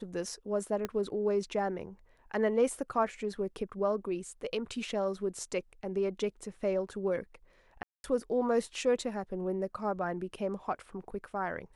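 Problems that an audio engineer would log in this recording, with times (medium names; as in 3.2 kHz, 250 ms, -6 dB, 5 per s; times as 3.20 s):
0.85 s: pop -19 dBFS
7.83–8.04 s: dropout 211 ms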